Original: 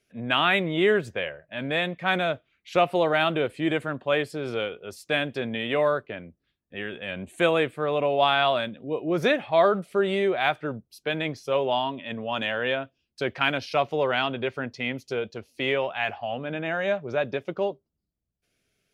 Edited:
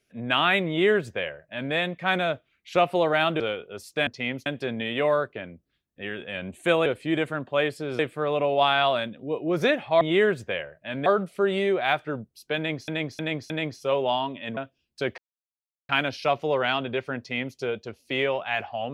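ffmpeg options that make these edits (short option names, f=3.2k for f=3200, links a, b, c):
-filter_complex "[0:a]asplit=13[a][b][c][d][e][f][g][h][i][j][k][l][m];[a]atrim=end=3.402[n];[b]atrim=start=4.528:end=5.202[o];[c]atrim=start=14.668:end=15.062[p];[d]atrim=start=5.198:end=7.602[q];[e]atrim=start=3.398:end=4.532[r];[f]atrim=start=7.598:end=9.622[s];[g]atrim=start=0.678:end=1.732[t];[h]atrim=start=9.618:end=11.442[u];[i]atrim=start=11.128:end=11.442[v];[j]atrim=start=11.128:end=11.442[w];[k]atrim=start=11.128:end=12.202[x];[l]atrim=start=12.768:end=13.38,asetpts=PTS-STARTPTS,afade=t=out:st=0.608:d=0.004:c=hsin,apad=pad_dur=0.71[y];[m]atrim=start=13.38,asetpts=PTS-STARTPTS,afade=t=in:d=0.004:c=hsin[z];[n][o]acrossfade=d=0.004:c1=hsin:c2=hsin[aa];[aa][p]acrossfade=d=0.004:c1=hsin:c2=hsin[ab];[ab][q]acrossfade=d=0.004:c1=hsin:c2=hsin[ac];[ac][r]acrossfade=d=0.004:c1=hsin:c2=hsin[ad];[ad][s]acrossfade=d=0.004:c1=hsin:c2=hsin[ae];[ae][t]acrossfade=d=0.004:c1=hsin:c2=hsin[af];[af][u]acrossfade=d=0.004:c1=hsin:c2=hsin[ag];[ag][v]acrossfade=d=0.004:c1=hsin:c2=hsin[ah];[ah][w]acrossfade=d=0.004:c1=hsin:c2=hsin[ai];[ai][x]acrossfade=d=0.004:c1=hsin:c2=hsin[aj];[y][z]concat=n=2:v=0:a=1[ak];[aj][ak]acrossfade=d=0.004:c1=hsin:c2=hsin"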